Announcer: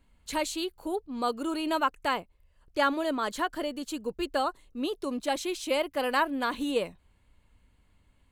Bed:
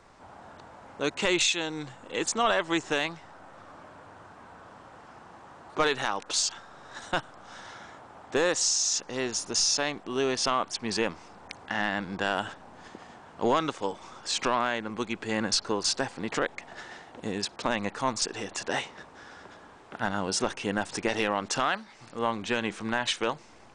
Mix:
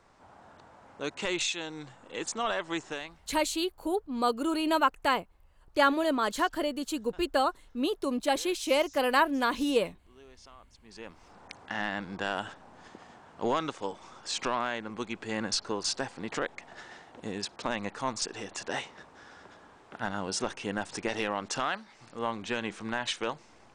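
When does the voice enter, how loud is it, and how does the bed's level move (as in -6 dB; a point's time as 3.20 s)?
3.00 s, +2.0 dB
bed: 2.82 s -6 dB
3.61 s -27 dB
10.77 s -27 dB
11.35 s -4 dB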